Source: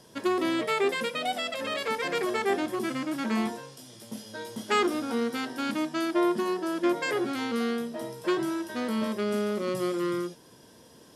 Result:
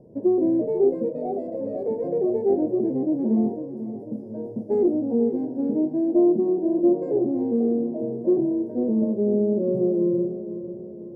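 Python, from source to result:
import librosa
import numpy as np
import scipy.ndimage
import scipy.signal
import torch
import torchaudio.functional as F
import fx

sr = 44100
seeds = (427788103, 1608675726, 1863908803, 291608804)

p1 = scipy.signal.sosfilt(scipy.signal.cheby2(4, 40, 1200.0, 'lowpass', fs=sr, output='sos'), x)
p2 = p1 + fx.echo_feedback(p1, sr, ms=496, feedback_pct=51, wet_db=-12.0, dry=0)
y = p2 * librosa.db_to_amplitude(7.5)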